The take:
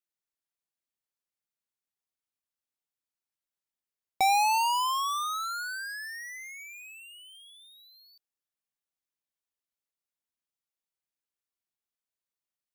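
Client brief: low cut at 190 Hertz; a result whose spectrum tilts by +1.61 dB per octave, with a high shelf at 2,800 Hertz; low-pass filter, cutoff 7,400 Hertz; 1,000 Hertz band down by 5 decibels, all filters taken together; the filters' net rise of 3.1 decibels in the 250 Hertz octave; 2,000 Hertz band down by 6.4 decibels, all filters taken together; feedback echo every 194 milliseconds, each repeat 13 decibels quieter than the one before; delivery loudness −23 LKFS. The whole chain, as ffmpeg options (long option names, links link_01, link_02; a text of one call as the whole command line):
ffmpeg -i in.wav -af "highpass=190,lowpass=7400,equalizer=frequency=250:width_type=o:gain=6,equalizer=frequency=1000:width_type=o:gain=-5,equalizer=frequency=2000:width_type=o:gain=-4.5,highshelf=frequency=2800:gain=-6,aecho=1:1:194|388|582:0.224|0.0493|0.0108,volume=10dB" out.wav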